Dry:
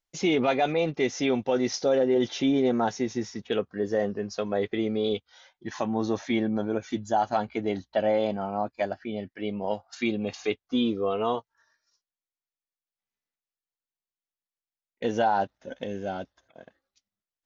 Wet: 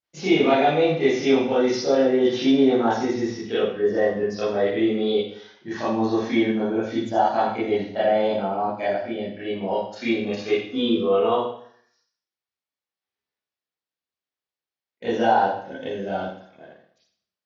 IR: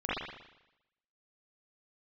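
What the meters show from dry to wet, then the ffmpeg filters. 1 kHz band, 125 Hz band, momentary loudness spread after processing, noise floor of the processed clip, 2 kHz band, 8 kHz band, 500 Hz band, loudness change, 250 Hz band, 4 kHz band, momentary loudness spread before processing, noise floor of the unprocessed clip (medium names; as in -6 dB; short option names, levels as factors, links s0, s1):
+5.5 dB, +2.5 dB, 12 LU, under -85 dBFS, +5.5 dB, no reading, +6.0 dB, +5.5 dB, +5.0 dB, +5.0 dB, 10 LU, under -85 dBFS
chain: -filter_complex "[0:a]highpass=82[s0];[1:a]atrim=start_sample=2205,asetrate=66150,aresample=44100[s1];[s0][s1]afir=irnorm=-1:irlink=0"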